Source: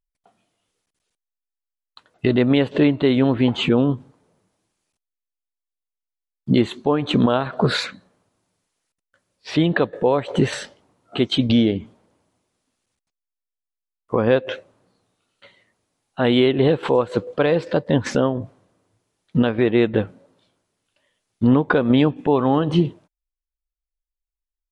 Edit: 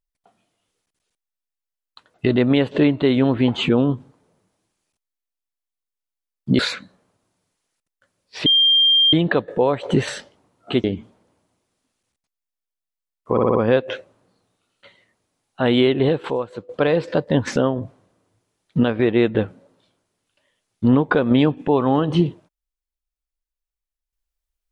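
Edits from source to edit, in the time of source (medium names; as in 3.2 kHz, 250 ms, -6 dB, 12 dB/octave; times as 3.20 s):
6.59–7.71 s: delete
9.58 s: add tone 3.19 kHz -11.5 dBFS 0.67 s
11.29–11.67 s: delete
14.14 s: stutter 0.06 s, 5 plays
16.53–17.28 s: fade out, to -16.5 dB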